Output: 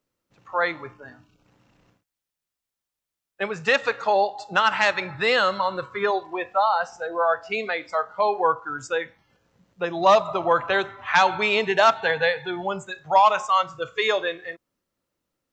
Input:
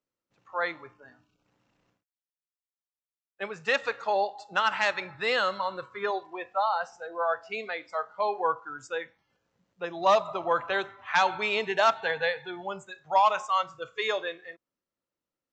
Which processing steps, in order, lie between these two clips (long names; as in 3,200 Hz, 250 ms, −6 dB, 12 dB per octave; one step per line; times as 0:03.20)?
low-shelf EQ 170 Hz +6.5 dB
in parallel at −2.5 dB: downward compressor, threshold −34 dBFS, peak gain reduction 15.5 dB
on the sum: level +4 dB